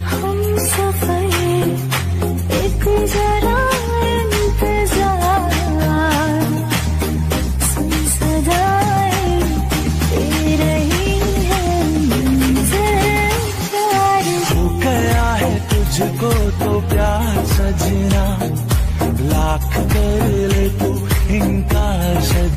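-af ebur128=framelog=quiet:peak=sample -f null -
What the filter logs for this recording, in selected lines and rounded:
Integrated loudness:
  I:         -16.3 LUFS
  Threshold: -26.3 LUFS
Loudness range:
  LRA:         1.4 LU
  Threshold: -36.3 LUFS
  LRA low:   -16.8 LUFS
  LRA high:  -15.4 LUFS
Sample peak:
  Peak:       -7.5 dBFS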